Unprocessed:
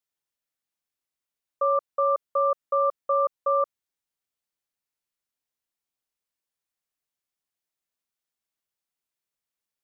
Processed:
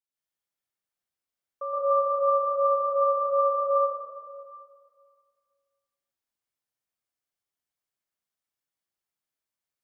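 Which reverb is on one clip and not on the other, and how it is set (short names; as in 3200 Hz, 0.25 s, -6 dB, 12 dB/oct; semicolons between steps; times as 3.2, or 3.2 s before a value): plate-style reverb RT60 2 s, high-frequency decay 0.5×, pre-delay 0.11 s, DRR -8.5 dB; gain -10 dB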